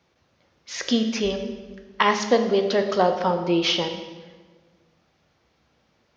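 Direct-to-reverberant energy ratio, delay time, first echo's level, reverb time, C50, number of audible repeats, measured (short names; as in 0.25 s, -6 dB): 6.0 dB, none, none, 1.5 s, 8.0 dB, none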